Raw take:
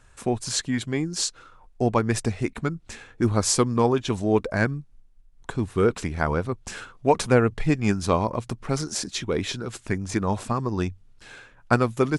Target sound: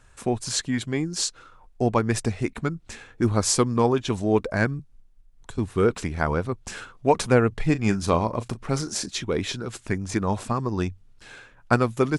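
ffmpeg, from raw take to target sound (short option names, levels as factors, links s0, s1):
-filter_complex "[0:a]asettb=1/sr,asplit=3[s0][s1][s2];[s0]atrim=end=4.794[s3];[s1]atrim=start=4.79:end=5.58,asetpts=PTS-STARTPTS,afade=t=in:d=0.004:c=qsin,afade=t=out:st=0.786:d=0.004:c=qsin,acrossover=split=130|3000[s4][s5][s6];[s5]acompressor=threshold=0.00562:ratio=4[s7];[s4][s7][s6]amix=inputs=3:normalize=0[s8];[s2]atrim=start=5.576[s9];[s3][s8]acrossfade=d=0.004:c1=hsin:c2=qsin[s10];[s10][s9]acrossfade=d=0.004:c1=qsin:c2=hsin,asettb=1/sr,asplit=3[s11][s12][s13];[s11]atrim=end=7.694[s14];[s12]atrim=start=7.69:end=9.06,asetpts=PTS-STARTPTS,afade=t=in:d=0.004:c=qsin,afade=t=out:st=1.366:d=0.004:c=qsin,asplit=2[s15][s16];[s16]adelay=36,volume=0.2[s17];[s15][s17]amix=inputs=2:normalize=0,atrim=end_sample=60417[s18];[s13]atrim=start=9.056[s19];[s14][s18]acrossfade=d=0.004:c1=hsin:c2=qsin[s20];[s20][s19]acrossfade=d=0.004:c1=qsin:c2=hsin"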